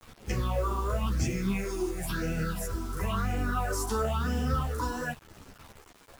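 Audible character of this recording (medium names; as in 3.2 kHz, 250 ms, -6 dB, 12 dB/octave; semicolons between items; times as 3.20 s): phasing stages 6, 0.97 Hz, lowest notch 150–1100 Hz; a quantiser's noise floor 8-bit, dither none; a shimmering, thickened sound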